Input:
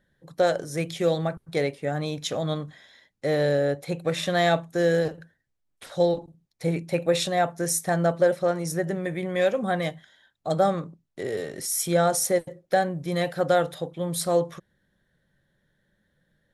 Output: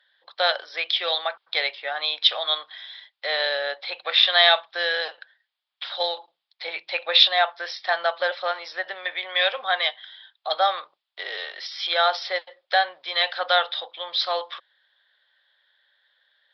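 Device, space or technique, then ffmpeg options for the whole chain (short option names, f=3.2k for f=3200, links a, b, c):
musical greeting card: -af "aresample=11025,aresample=44100,highpass=f=800:w=0.5412,highpass=f=800:w=1.3066,equalizer=f=3.4k:t=o:w=0.57:g=11,volume=7dB"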